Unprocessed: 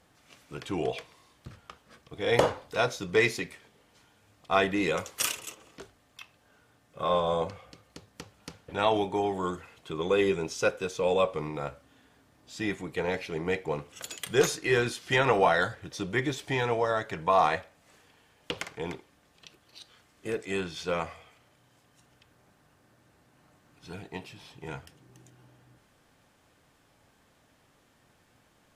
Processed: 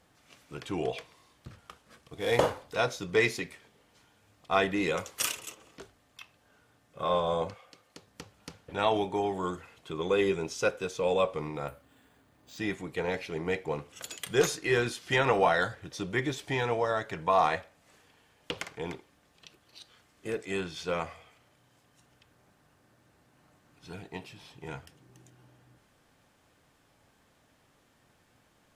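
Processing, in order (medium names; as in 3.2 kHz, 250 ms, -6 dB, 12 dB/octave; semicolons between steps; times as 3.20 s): 1.58–2.63 s: CVSD coder 64 kbps; 7.53–8.06 s: high-pass 820 Hz -> 200 Hz 6 dB/octave; 11.68–12.58 s: careless resampling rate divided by 4×, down filtered, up hold; trim -1.5 dB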